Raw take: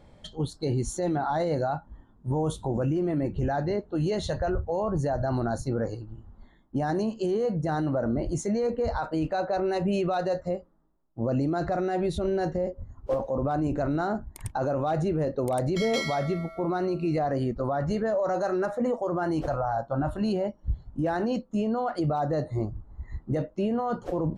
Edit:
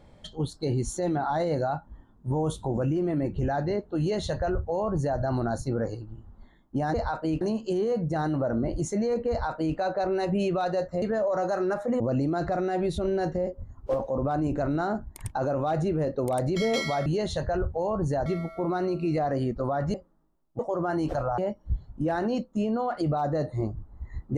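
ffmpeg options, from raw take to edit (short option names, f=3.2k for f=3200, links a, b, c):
-filter_complex "[0:a]asplit=10[a][b][c][d][e][f][g][h][i][j];[a]atrim=end=6.942[k];[b]atrim=start=8.828:end=9.302[l];[c]atrim=start=6.938:end=10.552[m];[d]atrim=start=17.938:end=18.922[n];[e]atrim=start=11.198:end=16.262[o];[f]atrim=start=3.988:end=5.192[p];[g]atrim=start=16.258:end=17.942[q];[h]atrim=start=10.548:end=11.202[r];[i]atrim=start=18.918:end=19.712[s];[j]atrim=start=20.358[t];[k][l]acrossfade=d=0.004:c1=hsin:c2=hsin[u];[u][m]acrossfade=d=0.004:c1=hsin:c2=hsin[v];[v][n]acrossfade=d=0.004:c1=hsin:c2=hsin[w];[w][o]acrossfade=d=0.004:c1=hsin:c2=hsin[x];[x][p]acrossfade=d=0.004:c1=hsin:c2=hsin[y];[y][q]acrossfade=d=0.004:c1=hsin:c2=hsin[z];[z][r]acrossfade=d=0.004:c1=hsin:c2=hsin[aa];[aa][s]acrossfade=d=0.004:c1=hsin:c2=hsin[ab];[ab][t]acrossfade=d=0.004:c1=hsin:c2=hsin"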